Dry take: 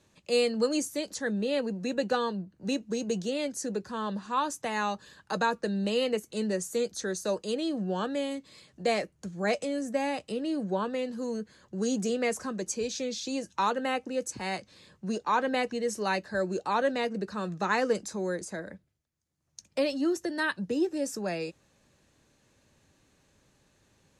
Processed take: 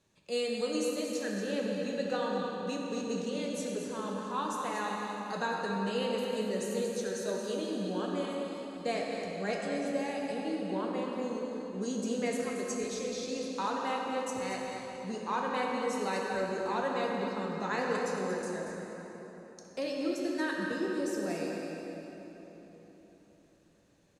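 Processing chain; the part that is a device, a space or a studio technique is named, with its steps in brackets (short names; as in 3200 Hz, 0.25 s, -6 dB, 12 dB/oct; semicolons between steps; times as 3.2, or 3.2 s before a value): cave (echo 0.232 s -8.5 dB; reverb RT60 4.0 s, pre-delay 3 ms, DRR -1.5 dB); gain -8 dB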